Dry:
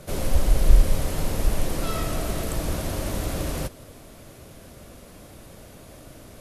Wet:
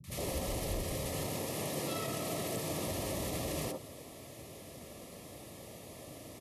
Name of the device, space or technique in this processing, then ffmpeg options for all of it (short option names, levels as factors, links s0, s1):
PA system with an anti-feedback notch: -filter_complex "[0:a]asettb=1/sr,asplit=3[s0][s1][s2];[s0]atrim=end=1.254[s3];[s1]atrim=start=1.25:end=2.87,asetpts=PTS-STARTPTS,afade=t=in:d=0.004:c=qsin,afade=t=out:st=1.616:d=0.004:c=qsin,highpass=f=100:w=0.5412,highpass=f=100:w=1.3066[s4];[s2]atrim=start=2.866[s5];[s3][s4]acrossfade=d=0.004:c1=hsin:c2=qsin[s6];[s6][s5]acrossfade=d=0.004:c1=qsin:c2=hsin,highpass=110,asuperstop=centerf=1500:order=8:qfactor=4.9,alimiter=level_in=1.12:limit=0.0631:level=0:latency=1:release=66,volume=0.891,acrossover=split=200|1200[s7][s8][s9];[s9]adelay=40[s10];[s8]adelay=100[s11];[s7][s11][s10]amix=inputs=3:normalize=0,volume=0.841"